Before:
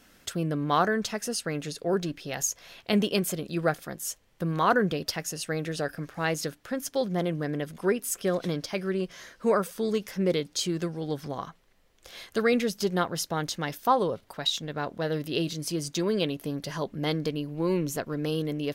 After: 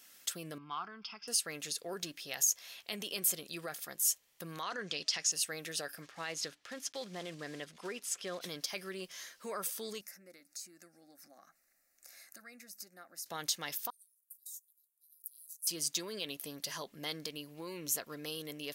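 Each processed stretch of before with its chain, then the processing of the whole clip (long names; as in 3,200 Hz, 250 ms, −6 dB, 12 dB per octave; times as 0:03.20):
0:00.58–0:01.28: Chebyshev low-pass with heavy ripple 5,200 Hz, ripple 3 dB + downward compressor 1.5 to 1, threshold −33 dBFS + phaser with its sweep stopped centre 2,700 Hz, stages 8
0:04.62–0:05.32: low-pass filter 6,700 Hz 24 dB per octave + high-shelf EQ 2,500 Hz +10.5 dB
0:06.02–0:08.41: one scale factor per block 5 bits + low-pass filter 5,100 Hz
0:10.01–0:13.26: downward compressor 2 to 1, threshold −50 dBFS + phaser with its sweep stopped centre 650 Hz, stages 8
0:13.90–0:15.67: inverse Chebyshev high-pass filter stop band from 2,400 Hz, stop band 70 dB + one half of a high-frequency compander decoder only
whole clip: brickwall limiter −21.5 dBFS; spectral tilt +4 dB per octave; notch filter 1,500 Hz, Q 20; level −8 dB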